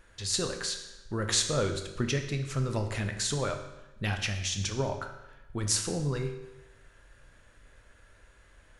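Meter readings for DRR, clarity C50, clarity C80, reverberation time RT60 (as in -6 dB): 5.0 dB, 8.0 dB, 10.0 dB, 1.0 s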